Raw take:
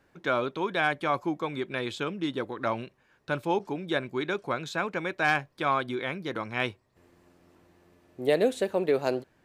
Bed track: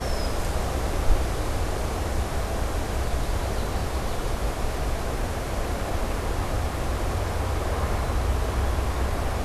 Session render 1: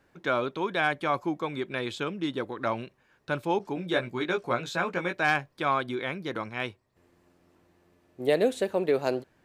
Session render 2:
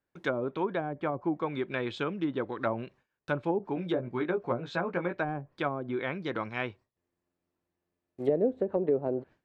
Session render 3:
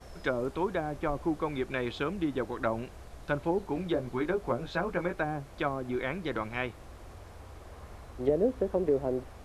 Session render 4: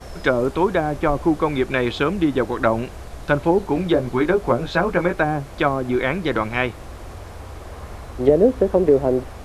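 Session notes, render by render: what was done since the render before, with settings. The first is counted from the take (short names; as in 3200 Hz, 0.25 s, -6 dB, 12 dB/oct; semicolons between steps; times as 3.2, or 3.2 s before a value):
3.75–5.2 doubler 17 ms -4 dB; 6.49–8.2 gain -3.5 dB
gate with hold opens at -51 dBFS; treble ducked by the level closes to 480 Hz, closed at -22.5 dBFS
add bed track -21.5 dB
gain +12 dB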